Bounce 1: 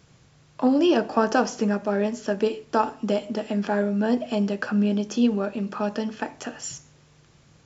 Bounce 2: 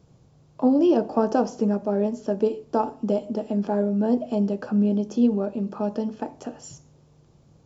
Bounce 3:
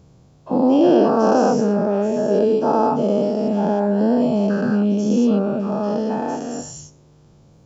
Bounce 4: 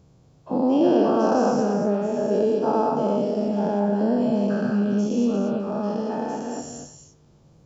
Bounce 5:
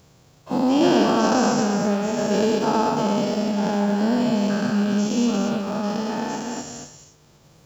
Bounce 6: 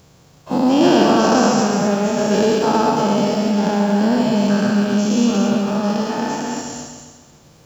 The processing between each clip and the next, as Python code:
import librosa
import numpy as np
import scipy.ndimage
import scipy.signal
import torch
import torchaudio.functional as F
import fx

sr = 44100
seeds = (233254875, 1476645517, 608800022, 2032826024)

y1 = fx.curve_eq(x, sr, hz=(490.0, 880.0, 1800.0, 4800.0), db=(0, -3, -16, -10))
y1 = y1 * 10.0 ** (1.0 / 20.0)
y2 = fx.spec_dilate(y1, sr, span_ms=240)
y3 = y2 + 10.0 ** (-6.5 / 20.0) * np.pad(y2, (int(235 * sr / 1000.0), 0))[:len(y2)]
y3 = y3 * 10.0 ** (-5.0 / 20.0)
y4 = fx.envelope_flatten(y3, sr, power=0.6)
y4 = y4 * 10.0 ** (1.0 / 20.0)
y5 = fx.echo_feedback(y4, sr, ms=134, feedback_pct=53, wet_db=-8.5)
y5 = y5 * 10.0 ** (4.0 / 20.0)